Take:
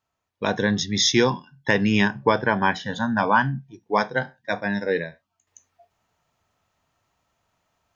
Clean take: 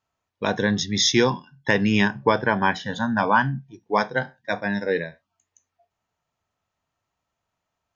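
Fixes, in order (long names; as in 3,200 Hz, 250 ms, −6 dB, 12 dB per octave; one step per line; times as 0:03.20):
level 0 dB, from 0:05.47 −8.5 dB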